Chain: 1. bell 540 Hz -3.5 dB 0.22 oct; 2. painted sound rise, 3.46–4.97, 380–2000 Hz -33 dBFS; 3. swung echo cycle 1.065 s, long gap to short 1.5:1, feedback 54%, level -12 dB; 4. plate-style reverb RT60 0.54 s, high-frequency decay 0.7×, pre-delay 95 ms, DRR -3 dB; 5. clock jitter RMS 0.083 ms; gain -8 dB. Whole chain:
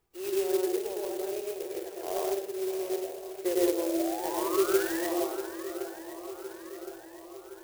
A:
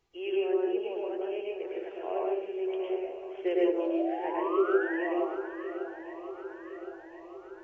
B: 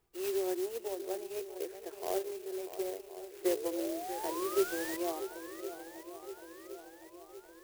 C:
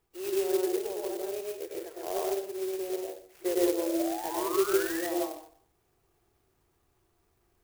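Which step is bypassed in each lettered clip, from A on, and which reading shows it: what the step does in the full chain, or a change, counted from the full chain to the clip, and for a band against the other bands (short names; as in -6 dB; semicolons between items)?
5, 2 kHz band +2.0 dB; 4, 250 Hz band -1.5 dB; 3, momentary loudness spread change -5 LU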